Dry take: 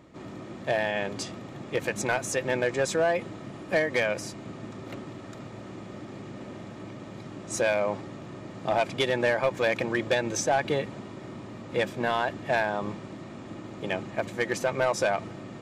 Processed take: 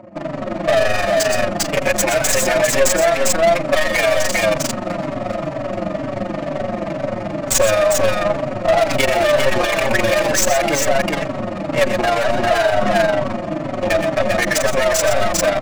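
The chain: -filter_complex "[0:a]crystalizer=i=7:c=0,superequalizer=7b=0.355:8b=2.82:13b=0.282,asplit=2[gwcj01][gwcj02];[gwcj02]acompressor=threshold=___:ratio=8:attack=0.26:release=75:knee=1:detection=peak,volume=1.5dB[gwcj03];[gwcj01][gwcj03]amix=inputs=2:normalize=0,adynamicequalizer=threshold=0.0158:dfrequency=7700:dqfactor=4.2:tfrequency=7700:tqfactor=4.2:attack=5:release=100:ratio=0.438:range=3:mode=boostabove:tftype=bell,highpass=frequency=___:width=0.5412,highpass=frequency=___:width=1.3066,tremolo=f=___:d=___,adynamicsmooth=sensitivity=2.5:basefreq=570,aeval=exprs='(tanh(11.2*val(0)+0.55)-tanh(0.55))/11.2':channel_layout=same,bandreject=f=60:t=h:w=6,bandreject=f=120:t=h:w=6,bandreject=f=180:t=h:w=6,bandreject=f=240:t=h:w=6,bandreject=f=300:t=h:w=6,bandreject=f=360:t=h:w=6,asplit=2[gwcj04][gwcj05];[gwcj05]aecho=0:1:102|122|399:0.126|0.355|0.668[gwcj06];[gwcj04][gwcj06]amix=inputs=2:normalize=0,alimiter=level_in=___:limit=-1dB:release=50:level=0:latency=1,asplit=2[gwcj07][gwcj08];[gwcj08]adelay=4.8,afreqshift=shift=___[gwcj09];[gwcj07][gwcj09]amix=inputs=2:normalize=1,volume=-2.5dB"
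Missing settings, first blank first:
-25dB, 120, 120, 23, 0.71, 18dB, -2.1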